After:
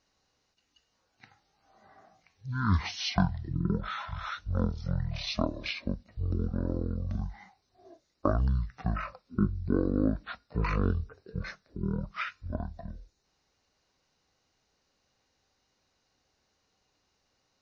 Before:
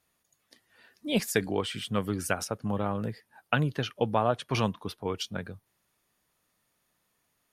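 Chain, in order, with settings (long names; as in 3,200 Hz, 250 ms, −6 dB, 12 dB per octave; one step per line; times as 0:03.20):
dynamic equaliser 1,300 Hz, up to −4 dB, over −39 dBFS, Q 0.72
wrong playback speed 78 rpm record played at 33 rpm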